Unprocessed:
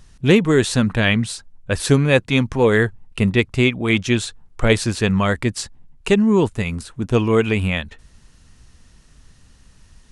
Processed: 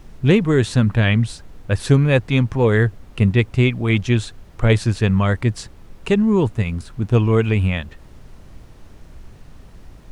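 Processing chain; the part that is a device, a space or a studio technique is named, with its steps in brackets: car interior (bell 110 Hz +8 dB 0.88 oct; high shelf 4700 Hz -7.5 dB; brown noise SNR 21 dB); gain -2 dB

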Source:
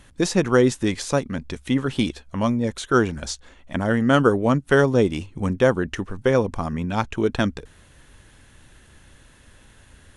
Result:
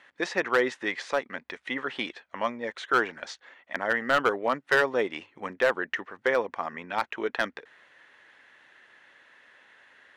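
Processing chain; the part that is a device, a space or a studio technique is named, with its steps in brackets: megaphone (BPF 580–3100 Hz; bell 1900 Hz +8 dB 0.39 oct; hard clip -13 dBFS, distortion -15 dB); gain -1.5 dB

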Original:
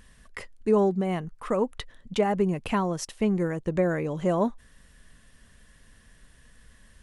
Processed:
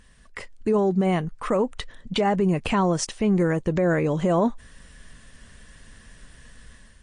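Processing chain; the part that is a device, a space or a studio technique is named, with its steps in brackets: low-bitrate web radio (AGC gain up to 8 dB; limiter -13 dBFS, peak gain reduction 8.5 dB; MP3 40 kbps 22050 Hz)

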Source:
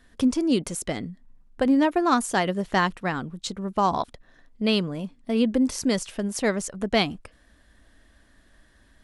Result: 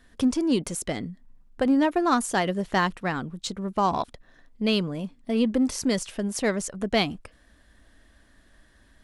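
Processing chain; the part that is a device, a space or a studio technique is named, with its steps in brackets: parallel distortion (in parallel at -11.5 dB: hard clip -26 dBFS, distortion -6 dB); on the sum: gain -2 dB

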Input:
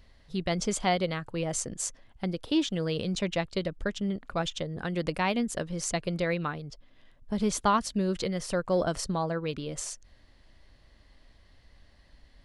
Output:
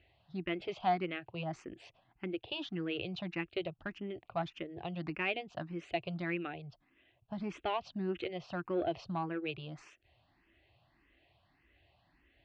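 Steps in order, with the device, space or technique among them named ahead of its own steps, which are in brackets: barber-pole phaser into a guitar amplifier (endless phaser +1.7 Hz; soft clip -21.5 dBFS, distortion -21 dB; speaker cabinet 85–3600 Hz, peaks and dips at 120 Hz +4 dB, 220 Hz -6 dB, 340 Hz +8 dB, 500 Hz -6 dB, 730 Hz +8 dB, 2600 Hz +10 dB); gain -5 dB

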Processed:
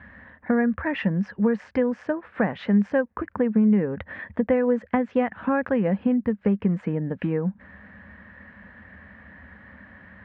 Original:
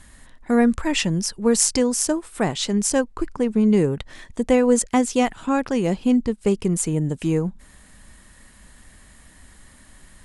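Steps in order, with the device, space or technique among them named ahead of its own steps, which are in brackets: bass amplifier (compressor 4:1, threshold -25 dBFS, peak gain reduction 11.5 dB; speaker cabinet 76–2200 Hz, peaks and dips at 78 Hz +6 dB, 140 Hz -7 dB, 200 Hz +7 dB, 360 Hz -7 dB, 530 Hz +5 dB, 1700 Hz +8 dB); gain +3.5 dB

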